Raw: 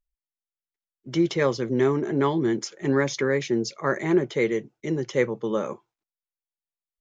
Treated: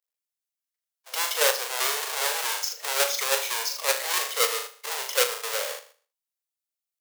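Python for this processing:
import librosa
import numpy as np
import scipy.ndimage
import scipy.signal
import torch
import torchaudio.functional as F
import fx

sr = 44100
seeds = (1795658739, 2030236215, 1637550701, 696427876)

p1 = fx.halfwave_hold(x, sr)
p2 = scipy.signal.sosfilt(scipy.signal.butter(12, 460.0, 'highpass', fs=sr, output='sos'), p1)
p3 = fx.high_shelf(p2, sr, hz=5300.0, db=3.0)
p4 = fx.room_flutter(p3, sr, wall_m=6.7, rt60_s=0.42)
p5 = fx.level_steps(p4, sr, step_db=19)
p6 = p4 + F.gain(torch.from_numpy(p5), -0.5).numpy()
p7 = fx.high_shelf(p6, sr, hz=2200.0, db=9.0)
y = F.gain(torch.from_numpy(p7), -10.5).numpy()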